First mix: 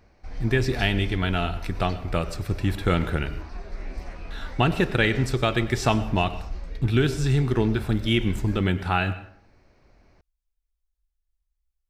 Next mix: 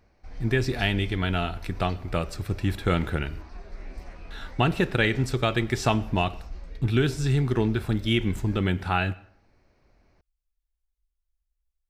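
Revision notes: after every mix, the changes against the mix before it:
speech: send -9.5 dB; background -5.0 dB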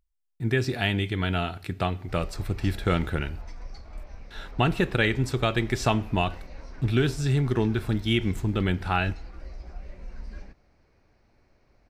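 speech: send -7.0 dB; background: entry +1.85 s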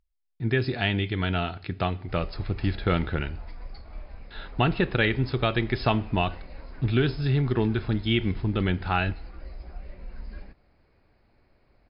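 master: add brick-wall FIR low-pass 5.2 kHz

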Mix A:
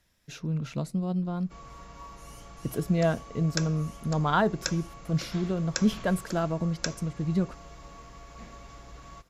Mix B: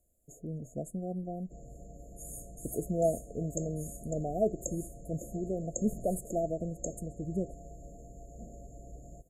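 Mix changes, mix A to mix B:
speech: add peaking EQ 150 Hz -10.5 dB 1.5 oct; second sound +11.5 dB; master: add brick-wall FIR band-stop 740–6500 Hz

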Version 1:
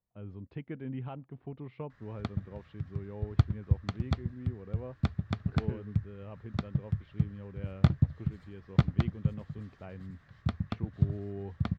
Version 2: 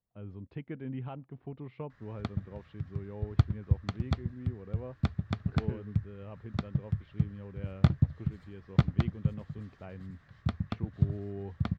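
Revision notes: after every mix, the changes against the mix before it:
no change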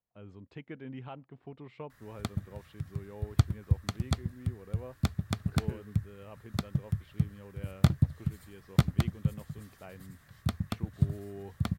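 speech: add bass shelf 270 Hz -8 dB; master: remove distance through air 190 m

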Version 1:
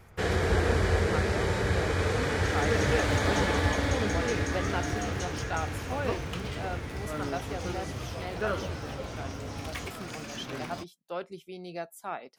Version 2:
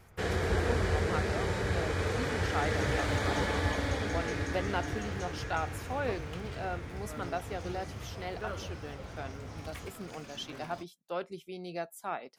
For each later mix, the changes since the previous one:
first sound -4.0 dB; second sound -9.0 dB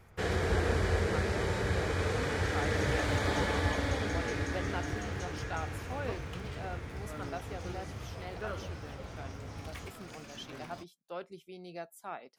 speech -5.5 dB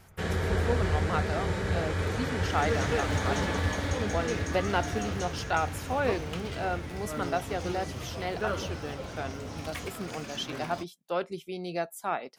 speech +11.0 dB; second sound +8.0 dB; reverb: on, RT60 0.55 s

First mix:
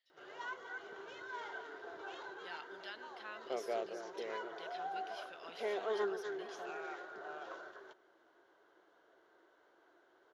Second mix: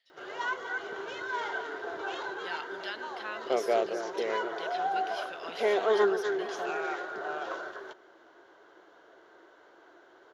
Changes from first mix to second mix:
speech +9.5 dB; background +11.5 dB

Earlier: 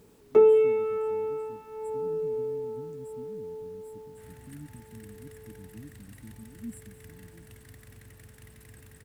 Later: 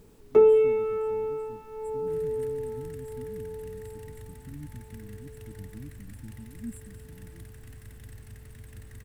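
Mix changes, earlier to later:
second sound: entry -2.10 s; master: remove high-pass 140 Hz 6 dB/octave

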